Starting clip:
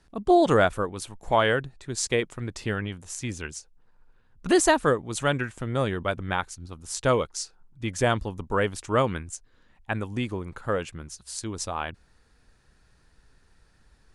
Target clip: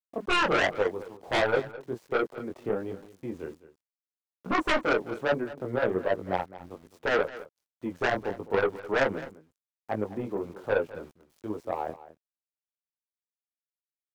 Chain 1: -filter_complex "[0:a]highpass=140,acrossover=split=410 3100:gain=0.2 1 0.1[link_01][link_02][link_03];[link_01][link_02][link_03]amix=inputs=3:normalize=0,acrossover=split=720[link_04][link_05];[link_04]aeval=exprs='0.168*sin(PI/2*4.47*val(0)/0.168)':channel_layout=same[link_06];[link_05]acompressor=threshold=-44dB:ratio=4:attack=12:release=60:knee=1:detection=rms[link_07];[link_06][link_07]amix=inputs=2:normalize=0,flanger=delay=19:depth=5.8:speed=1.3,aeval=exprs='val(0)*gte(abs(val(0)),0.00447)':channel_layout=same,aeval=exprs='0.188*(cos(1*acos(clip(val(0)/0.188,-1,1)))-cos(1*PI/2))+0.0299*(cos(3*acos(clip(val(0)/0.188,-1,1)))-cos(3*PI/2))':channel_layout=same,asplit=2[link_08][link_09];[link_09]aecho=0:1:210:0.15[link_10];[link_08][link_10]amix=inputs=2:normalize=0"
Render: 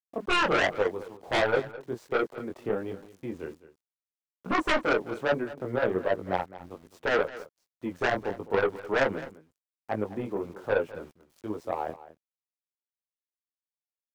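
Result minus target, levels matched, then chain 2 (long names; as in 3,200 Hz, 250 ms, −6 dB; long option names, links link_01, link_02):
downward compressor: peak gain reduction −4.5 dB
-filter_complex "[0:a]highpass=140,acrossover=split=410 3100:gain=0.2 1 0.1[link_01][link_02][link_03];[link_01][link_02][link_03]amix=inputs=3:normalize=0,acrossover=split=720[link_04][link_05];[link_04]aeval=exprs='0.168*sin(PI/2*4.47*val(0)/0.168)':channel_layout=same[link_06];[link_05]acompressor=threshold=-50dB:ratio=4:attack=12:release=60:knee=1:detection=rms[link_07];[link_06][link_07]amix=inputs=2:normalize=0,flanger=delay=19:depth=5.8:speed=1.3,aeval=exprs='val(0)*gte(abs(val(0)),0.00447)':channel_layout=same,aeval=exprs='0.188*(cos(1*acos(clip(val(0)/0.188,-1,1)))-cos(1*PI/2))+0.0299*(cos(3*acos(clip(val(0)/0.188,-1,1)))-cos(3*PI/2))':channel_layout=same,asplit=2[link_08][link_09];[link_09]aecho=0:1:210:0.15[link_10];[link_08][link_10]amix=inputs=2:normalize=0"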